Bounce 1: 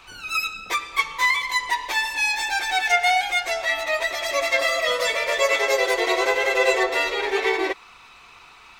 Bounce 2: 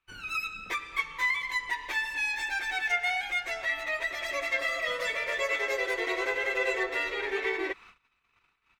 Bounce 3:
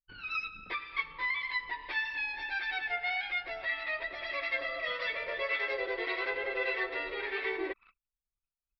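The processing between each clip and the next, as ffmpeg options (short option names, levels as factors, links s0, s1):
-filter_complex "[0:a]agate=range=0.0355:threshold=0.00631:ratio=16:detection=peak,firequalizer=gain_entry='entry(170,0);entry(740,-9);entry(1700,0);entry(4300,-9)':delay=0.05:min_phase=1,asplit=2[s0][s1];[s1]acompressor=threshold=0.0251:ratio=6,volume=1.19[s2];[s0][s2]amix=inputs=2:normalize=0,volume=0.398"
-filter_complex "[0:a]acrossover=split=940[s0][s1];[s0]aeval=exprs='val(0)*(1-0.5/2+0.5/2*cos(2*PI*1.7*n/s))':c=same[s2];[s1]aeval=exprs='val(0)*(1-0.5/2-0.5/2*cos(2*PI*1.7*n/s))':c=same[s3];[s2][s3]amix=inputs=2:normalize=0,anlmdn=0.00251,aresample=11025,aresample=44100,volume=0.841"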